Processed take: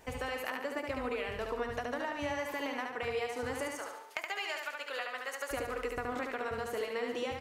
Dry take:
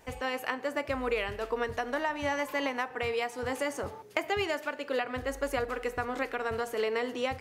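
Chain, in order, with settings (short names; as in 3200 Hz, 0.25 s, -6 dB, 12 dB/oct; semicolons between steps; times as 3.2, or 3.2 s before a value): 3.74–5.51 HPF 900 Hz 12 dB/oct; compressor, threshold -34 dBFS, peak gain reduction 9 dB; feedback echo 72 ms, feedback 46%, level -4 dB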